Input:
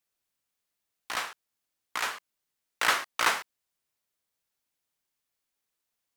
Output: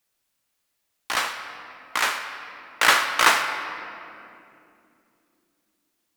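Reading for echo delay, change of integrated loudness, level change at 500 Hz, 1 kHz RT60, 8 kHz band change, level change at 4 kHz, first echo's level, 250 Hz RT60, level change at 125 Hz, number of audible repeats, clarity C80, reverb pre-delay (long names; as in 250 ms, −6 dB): no echo audible, +8.0 dB, +8.5 dB, 2.4 s, +8.0 dB, +8.5 dB, no echo audible, 4.4 s, can't be measured, no echo audible, 8.0 dB, 4 ms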